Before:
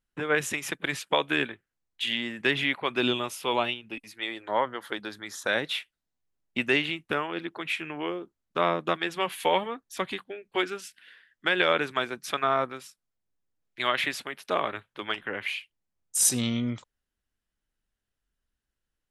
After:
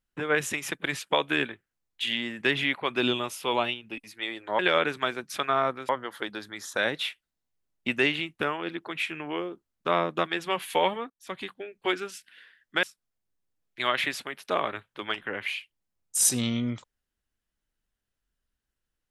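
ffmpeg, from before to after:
ffmpeg -i in.wav -filter_complex "[0:a]asplit=5[link_01][link_02][link_03][link_04][link_05];[link_01]atrim=end=4.592[link_06];[link_02]atrim=start=11.528:end=12.832[link_07];[link_03]atrim=start=4.588:end=9.8,asetpts=PTS-STARTPTS,afade=type=out:start_time=5.208:duration=0.004:curve=hsin:silence=0.0794328[link_08];[link_04]atrim=start=9.8:end=11.532,asetpts=PTS-STARTPTS,afade=type=in:duration=0.48:silence=0.0794328[link_09];[link_05]atrim=start=12.828[link_10];[link_06][link_07]acrossfade=duration=0.004:curve1=hsin:curve2=hsin[link_11];[link_08][link_09]concat=n=2:v=0:a=1[link_12];[link_11][link_12]acrossfade=duration=0.004:curve1=hsin:curve2=hsin[link_13];[link_13][link_10]acrossfade=duration=0.004:curve1=hsin:curve2=hsin" out.wav

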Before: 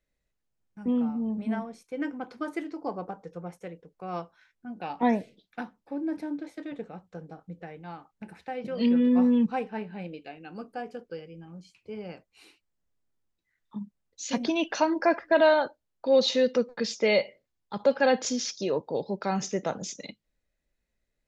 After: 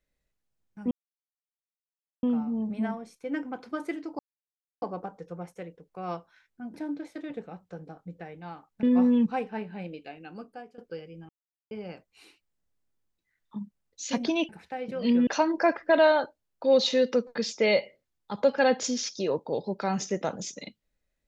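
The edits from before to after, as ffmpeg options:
ffmpeg -i in.wav -filter_complex "[0:a]asplit=10[link_01][link_02][link_03][link_04][link_05][link_06][link_07][link_08][link_09][link_10];[link_01]atrim=end=0.91,asetpts=PTS-STARTPTS,afade=type=out:start_time=0.906:duration=0.004:curve=hsin,apad=pad_dur=1.32[link_11];[link_02]atrim=start=0.91:end=2.87,asetpts=PTS-STARTPTS,afade=type=in:duration=0.004:curve=hsin,afade=type=out:start_time=1.956:duration=0.004:curve=hsin,apad=pad_dur=0.63[link_12];[link_03]atrim=start=2.87:end=4.792,asetpts=PTS-STARTPTS,afade=type=in:duration=0.004:curve=hsin[link_13];[link_04]atrim=start=6.158:end=8.252[link_14];[link_05]atrim=start=9.028:end=10.98,asetpts=PTS-STARTPTS,afade=type=out:start_time=1.412:duration=0.54:silence=0.149624[link_15];[link_06]atrim=start=10.98:end=11.49,asetpts=PTS-STARTPTS,afade=type=in:duration=0.004:curve=hsin:silence=0.149624,afade=type=out:start_time=0.506:duration=0.004:curve=hsin[link_16];[link_07]atrim=start=11.49:end=11.91,asetpts=PTS-STARTPTS,volume=0[link_17];[link_08]atrim=start=11.91:end=14.692,asetpts=PTS-STARTPTS,afade=type=in:duration=0.004:curve=hsin[link_18];[link_09]atrim=start=8.248:end=9.032[link_19];[link_10]atrim=start=14.688[link_20];[link_11][link_12][link_13]concat=n=3:v=0:a=1[link_21];[link_21][link_14]acrossfade=duration=0.004:curve1=hsin:curve2=hsin[link_22];[link_15][link_16][link_17][link_18]concat=n=4:v=0:a=1[link_23];[link_22][link_23]acrossfade=duration=0.004:curve1=hsin:curve2=hsin[link_24];[link_24][link_19]acrossfade=duration=0.004:curve1=hsin:curve2=hsin[link_25];[link_25][link_20]acrossfade=duration=0.004:curve1=hsin:curve2=hsin" out.wav

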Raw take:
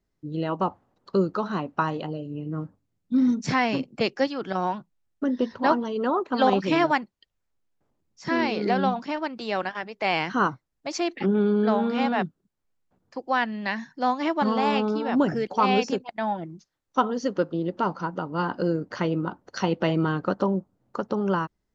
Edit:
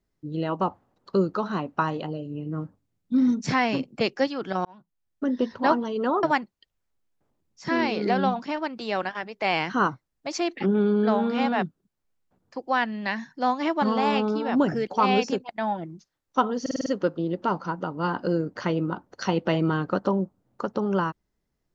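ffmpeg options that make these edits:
ffmpeg -i in.wav -filter_complex "[0:a]asplit=8[link_01][link_02][link_03][link_04][link_05][link_06][link_07][link_08];[link_01]atrim=end=4.65,asetpts=PTS-STARTPTS,afade=type=out:start_time=4.646:duration=0.004:curve=hsin[link_09];[link_02]atrim=start=4.65:end=6.232,asetpts=PTS-STARTPTS,afade=type=in:duration=0.66[link_10];[link_03]atrim=start=6.828:end=17.262[link_11];[link_04]atrim=start=17.208:end=17.262[link_12];[link_05]atrim=start=17.208:end=17.262[link_13];[link_06]atrim=start=17.208:end=17.262[link_14];[link_07]atrim=start=17.208:end=17.262[link_15];[link_08]atrim=start=17.208[link_16];[link_09][link_10]concat=n=2:v=0:a=1[link_17];[link_17][link_11]acrossfade=duration=0.004:curve1=hsin:curve2=hsin[link_18];[link_18][link_12]acrossfade=duration=0.004:curve1=hsin:curve2=hsin[link_19];[link_19][link_13]acrossfade=duration=0.004:curve1=hsin:curve2=hsin[link_20];[link_20][link_14]acrossfade=duration=0.004:curve1=hsin:curve2=hsin[link_21];[link_21][link_15]acrossfade=duration=0.004:curve1=hsin:curve2=hsin[link_22];[link_22][link_16]acrossfade=duration=0.004:curve1=hsin:curve2=hsin" out.wav

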